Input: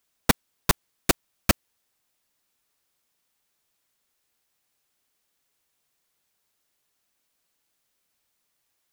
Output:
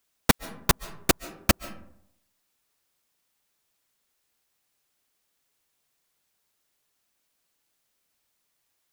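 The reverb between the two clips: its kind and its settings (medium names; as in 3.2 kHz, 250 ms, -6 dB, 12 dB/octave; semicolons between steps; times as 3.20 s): algorithmic reverb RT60 0.72 s, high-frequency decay 0.45×, pre-delay 100 ms, DRR 16.5 dB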